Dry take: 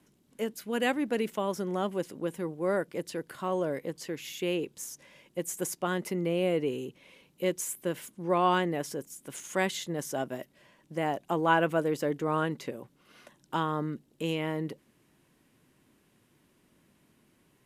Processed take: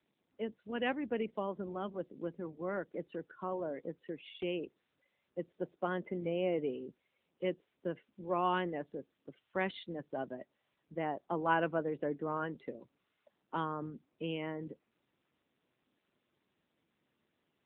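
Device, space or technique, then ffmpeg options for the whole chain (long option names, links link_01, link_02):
mobile call with aggressive noise cancelling: -filter_complex "[0:a]asplit=3[link_01][link_02][link_03];[link_01]afade=type=out:start_time=5.49:duration=0.02[link_04];[link_02]equalizer=frequency=610:width_type=o:width=0.87:gain=3.5,afade=type=in:start_time=5.49:duration=0.02,afade=type=out:start_time=6.81:duration=0.02[link_05];[link_03]afade=type=in:start_time=6.81:duration=0.02[link_06];[link_04][link_05][link_06]amix=inputs=3:normalize=0,highpass=frequency=140:width=0.5412,highpass=frequency=140:width=1.3066,afftdn=noise_reduction=21:noise_floor=-42,volume=-5.5dB" -ar 8000 -c:a libopencore_amrnb -b:a 10200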